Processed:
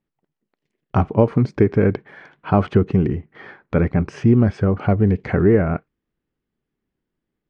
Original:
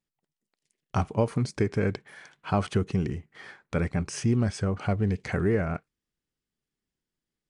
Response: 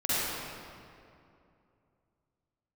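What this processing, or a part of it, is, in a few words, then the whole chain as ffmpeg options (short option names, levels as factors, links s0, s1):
phone in a pocket: -af "lowpass=3200,equalizer=f=320:t=o:w=1.2:g=3.5,highshelf=f=2400:g=-9,volume=2.66"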